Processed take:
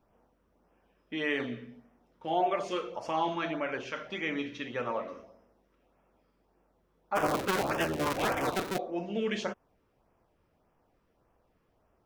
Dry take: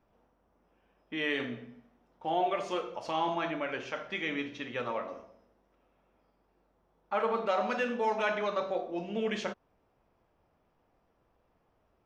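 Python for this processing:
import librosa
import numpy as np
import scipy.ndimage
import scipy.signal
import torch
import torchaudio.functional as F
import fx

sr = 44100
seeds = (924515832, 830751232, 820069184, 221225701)

y = fx.cycle_switch(x, sr, every=3, mode='inverted', at=(7.15, 8.77), fade=0.02)
y = fx.filter_lfo_notch(y, sr, shape='sine', hz=1.7, low_hz=690.0, high_hz=4200.0, q=1.8)
y = y * 10.0 ** (1.5 / 20.0)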